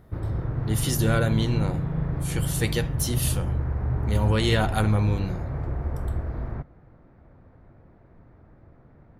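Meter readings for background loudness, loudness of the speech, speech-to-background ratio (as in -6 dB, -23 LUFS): -29.0 LUFS, -26.5 LUFS, 2.5 dB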